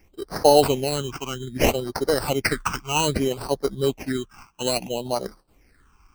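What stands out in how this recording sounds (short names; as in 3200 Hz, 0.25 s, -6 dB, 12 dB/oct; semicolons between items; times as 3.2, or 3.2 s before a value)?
aliases and images of a low sample rate 3500 Hz, jitter 0%; phasing stages 8, 0.62 Hz, lowest notch 540–2600 Hz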